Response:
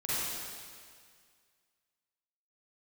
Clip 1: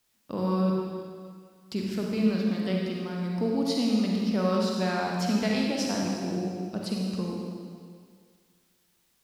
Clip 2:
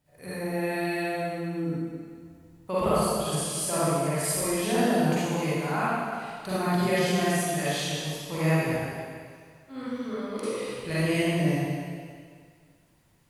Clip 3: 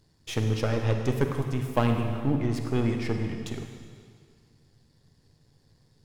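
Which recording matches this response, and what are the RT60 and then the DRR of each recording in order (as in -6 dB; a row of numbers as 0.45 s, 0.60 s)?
2; 2.0 s, 2.0 s, 2.0 s; -2.0 dB, -11.5 dB, 4.5 dB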